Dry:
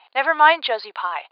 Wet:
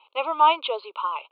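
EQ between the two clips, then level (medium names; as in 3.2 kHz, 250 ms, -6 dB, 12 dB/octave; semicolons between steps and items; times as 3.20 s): Butterworth band-stop 1.8 kHz, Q 1.6; low-pass 3.5 kHz 12 dB/octave; static phaser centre 1.1 kHz, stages 8; 0.0 dB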